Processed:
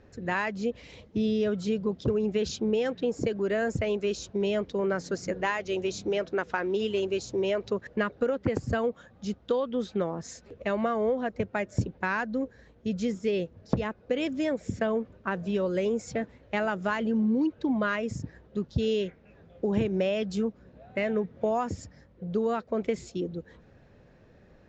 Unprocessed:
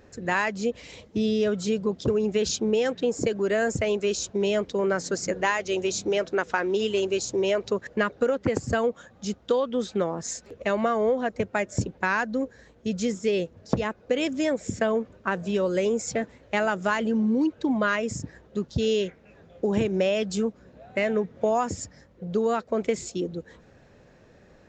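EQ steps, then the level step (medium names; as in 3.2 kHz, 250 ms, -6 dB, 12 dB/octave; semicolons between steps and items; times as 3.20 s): low-pass 5 kHz 12 dB/octave; bass shelf 220 Hz +5.5 dB; -4.5 dB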